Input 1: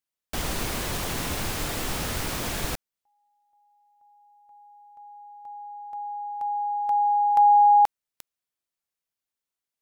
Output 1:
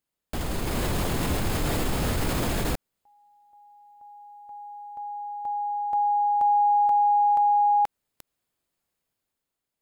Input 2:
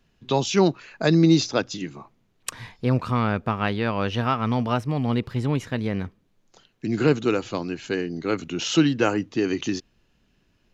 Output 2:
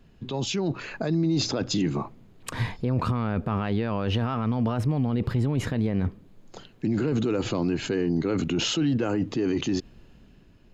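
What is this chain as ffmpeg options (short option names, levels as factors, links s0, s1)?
-af "tiltshelf=f=810:g=4.5,bandreject=f=5800:w=10,areverse,acompressor=threshold=0.0355:ratio=5:attack=8.5:release=38:detection=rms,areverse,alimiter=level_in=1.58:limit=0.0631:level=0:latency=1:release=85,volume=0.631,dynaudnorm=f=120:g=11:m=1.68,volume=2.11"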